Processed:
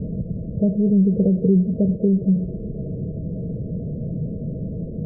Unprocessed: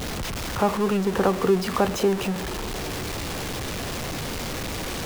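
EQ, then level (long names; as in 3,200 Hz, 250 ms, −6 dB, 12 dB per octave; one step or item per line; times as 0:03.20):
Chebyshev low-pass with heavy ripple 660 Hz, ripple 9 dB
parametric band 160 Hz +6.5 dB 1.5 octaves
low-shelf EQ 430 Hz +9 dB
−2.0 dB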